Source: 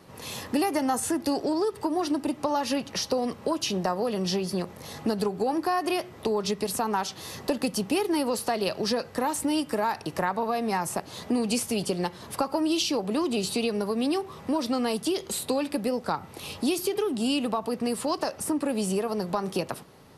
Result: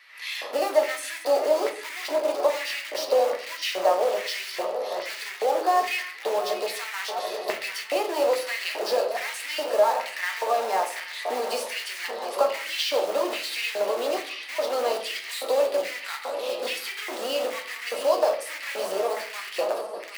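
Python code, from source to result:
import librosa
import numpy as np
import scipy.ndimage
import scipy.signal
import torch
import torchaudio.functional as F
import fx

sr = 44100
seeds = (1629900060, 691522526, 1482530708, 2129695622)

p1 = fx.reverse_delay_fb(x, sr, ms=368, feedback_pct=74, wet_db=-11.5)
p2 = fx.high_shelf_res(p1, sr, hz=5500.0, db=-6.0, q=1.5)
p3 = (np.mod(10.0 ** (27.5 / 20.0) * p2 + 1.0, 2.0) - 1.0) / 10.0 ** (27.5 / 20.0)
p4 = p2 + (p3 * 10.0 ** (-5.0 / 20.0))
p5 = fx.filter_lfo_highpass(p4, sr, shape='square', hz=1.2, low_hz=570.0, high_hz=2000.0, q=4.4)
p6 = scipy.signal.sosfilt(scipy.signal.butter(2, 290.0, 'highpass', fs=sr, output='sos'), p5)
p7 = fx.room_shoebox(p6, sr, seeds[0], volume_m3=53.0, walls='mixed', distance_m=0.45)
y = p7 * 10.0 ** (-4.0 / 20.0)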